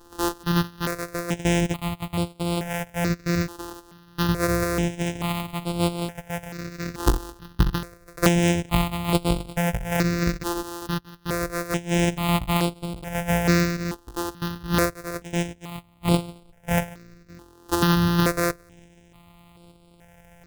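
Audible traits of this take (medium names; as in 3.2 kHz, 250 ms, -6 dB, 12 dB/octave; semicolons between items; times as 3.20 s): a buzz of ramps at a fixed pitch in blocks of 256 samples; random-step tremolo 3.5 Hz; notches that jump at a steady rate 2.3 Hz 600–6100 Hz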